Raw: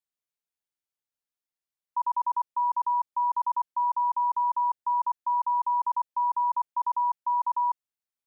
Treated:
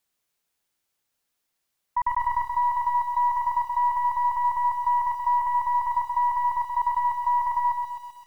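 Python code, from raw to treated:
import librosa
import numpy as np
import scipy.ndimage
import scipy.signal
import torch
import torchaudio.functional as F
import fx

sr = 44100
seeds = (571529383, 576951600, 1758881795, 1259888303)

p1 = fx.tracing_dist(x, sr, depth_ms=0.023)
p2 = fx.peak_eq(p1, sr, hz=fx.line((1.99, 810.0), (2.51, 680.0)), db=-9.5, octaves=1.2, at=(1.99, 2.51), fade=0.02)
p3 = fx.over_compress(p2, sr, threshold_db=-35.0, ratio=-1.0)
p4 = p2 + (p3 * librosa.db_to_amplitude(3.0))
y = fx.echo_crushed(p4, sr, ms=129, feedback_pct=55, bits=9, wet_db=-5.5)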